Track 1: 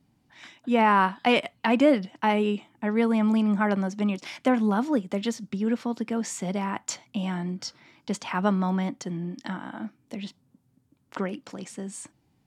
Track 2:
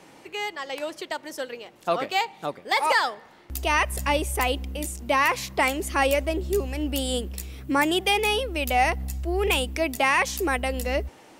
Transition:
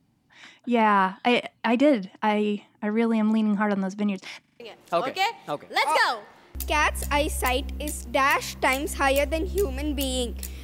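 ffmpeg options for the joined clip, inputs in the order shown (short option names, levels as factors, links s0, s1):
-filter_complex "[0:a]apad=whole_dur=10.63,atrim=end=10.63,asplit=5[s0][s1][s2][s3][s4];[s0]atrim=end=4.442[s5];[s1]atrim=start=4.398:end=4.442[s6];[s2]atrim=start=4.398:end=4.442[s7];[s3]atrim=start=4.398:end=4.442[s8];[s4]atrim=start=4.398:end=4.442[s9];[1:a]atrim=start=1.548:end=7.58[s10];[s5][s6]acrossfade=d=0.004:c1=hsin:c2=hsin[s11];[s11][s7]acrossfade=d=0.004:c1=hsin:c2=hsin[s12];[s12][s8]acrossfade=d=0.004:c1=hsin:c2=hsin[s13];[s13][s9]acrossfade=d=0.004:c1=hsin:c2=hsin[s14];[s14][s10]acrossfade=d=0.004:c1=hsin:c2=hsin"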